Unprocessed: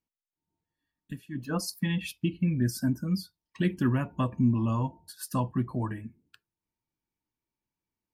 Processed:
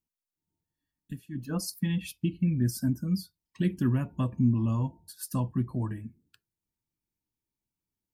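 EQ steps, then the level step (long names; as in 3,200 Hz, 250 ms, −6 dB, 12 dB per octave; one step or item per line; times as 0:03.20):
low-shelf EQ 430 Hz +11 dB
high-shelf EQ 3,800 Hz +11 dB
−9.0 dB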